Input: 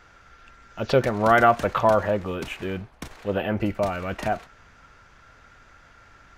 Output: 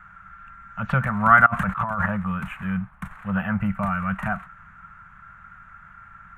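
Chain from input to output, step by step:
drawn EQ curve 110 Hz 0 dB, 190 Hz +8 dB, 340 Hz −28 dB, 1,300 Hz +8 dB, 2,700 Hz −8 dB, 5,000 Hz −27 dB, 8,500 Hz −9 dB
0:01.46–0:02.06: compressor whose output falls as the input rises −28 dBFS, ratio −1
level +2 dB

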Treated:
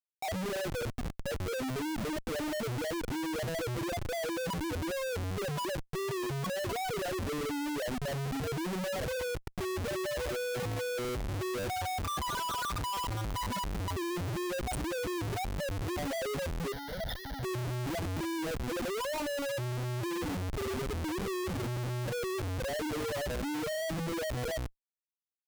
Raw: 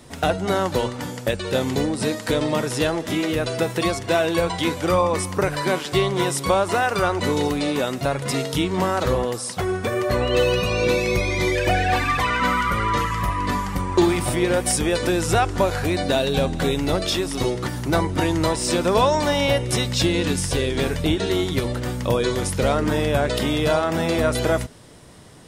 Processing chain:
spectral peaks only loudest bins 2
comparator with hysteresis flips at −34.5 dBFS
0:16.72–0:17.43: phaser with its sweep stopped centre 1,700 Hz, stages 8
level −7.5 dB

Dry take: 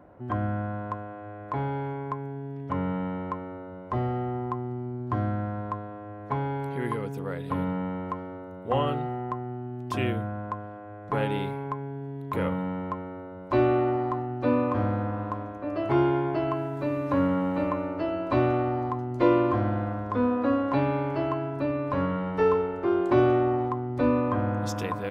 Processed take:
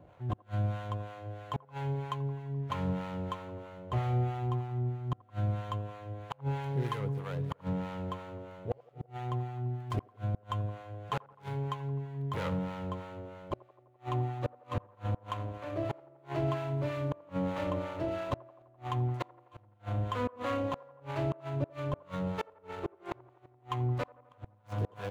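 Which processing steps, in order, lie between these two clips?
running median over 25 samples
octave-band graphic EQ 125/250/2,000 Hz +8/−9/+3 dB
two-band tremolo in antiphase 3.1 Hz, depth 70%, crossover 690 Hz
0:10.34–0:10.82: low-shelf EQ 290 Hz +7 dB
gate with flip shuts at −21 dBFS, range −37 dB
delay with a band-pass on its return 85 ms, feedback 69%, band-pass 740 Hz, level −21 dB

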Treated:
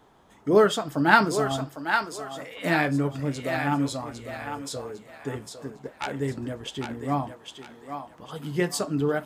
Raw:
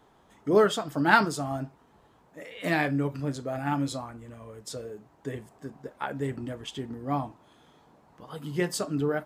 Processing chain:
0:05.53–0:06.19: phase distortion by the signal itself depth 0.29 ms
feedback echo with a high-pass in the loop 804 ms, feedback 37%, high-pass 630 Hz, level −5 dB
level +2.5 dB

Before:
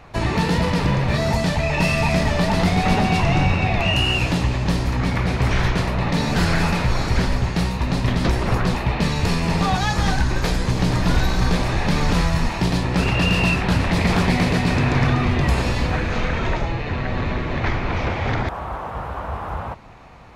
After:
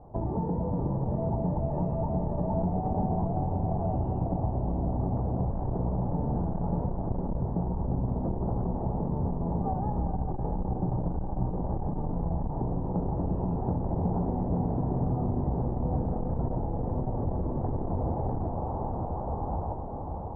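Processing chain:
Chebyshev low-pass filter 860 Hz, order 4
downward compressor 4 to 1, threshold −23 dBFS, peak gain reduction 8.5 dB
on a send: feedback delay with all-pass diffusion 586 ms, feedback 73%, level −6 dB
on the sum: saturating transformer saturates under 93 Hz
level −3.5 dB

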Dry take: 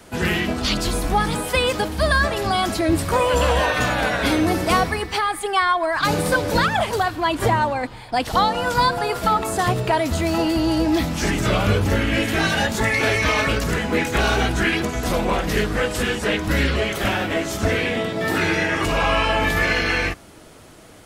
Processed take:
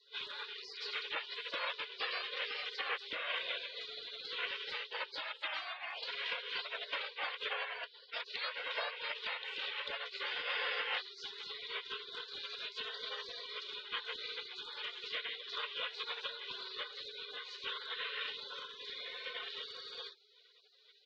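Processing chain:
comb filter 2.1 ms, depth 45%
single-sideband voice off tune +310 Hz 270–2,800 Hz
downward compressor 10 to 1, threshold −23 dBFS, peak gain reduction 11.5 dB
gate on every frequency bin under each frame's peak −30 dB weak
level +10.5 dB

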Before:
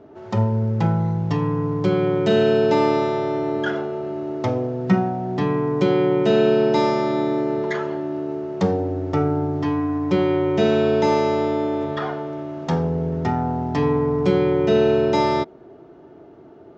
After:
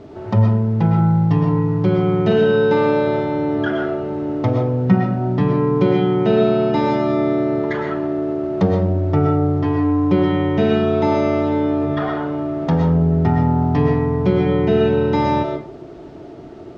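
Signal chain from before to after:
low-shelf EQ 140 Hz +11 dB
in parallel at +2.5 dB: downward compressor 16 to 1, threshold −25 dBFS, peak gain reduction 18 dB
on the sum: bit-depth reduction 8 bits, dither none
high-frequency loss of the air 170 metres
0:02.25–0:03.07: flutter between parallel walls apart 9 metres, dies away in 0.44 s
on a send at −2.5 dB: convolution reverb RT60 0.40 s, pre-delay 85 ms
on the sum: level −2 dB

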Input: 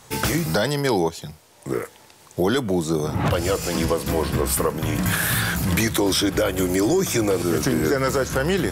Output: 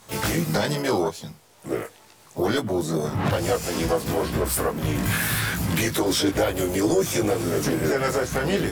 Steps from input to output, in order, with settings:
chorus effect 2.3 Hz, delay 18 ms, depth 2.3 ms
pitch-shifted copies added +4 semitones −10 dB, +7 semitones −10 dB

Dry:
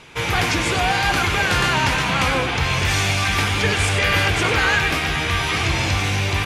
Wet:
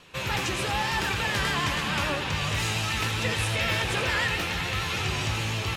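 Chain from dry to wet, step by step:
feedback delay with all-pass diffusion 483 ms, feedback 55%, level −12.5 dB
change of speed 1.12×
pitch vibrato 6.9 Hz 41 cents
level −8.5 dB

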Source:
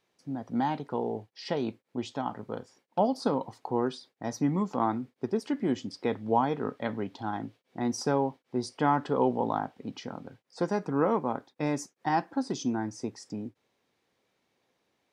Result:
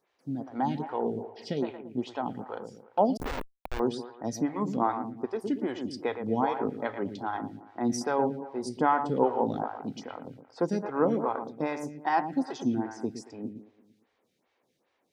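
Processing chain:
bucket-brigade delay 114 ms, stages 2,048, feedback 47%, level −9 dB
0:03.17–0:03.80: comparator with hysteresis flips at −27 dBFS
phaser with staggered stages 2.5 Hz
level +2.5 dB

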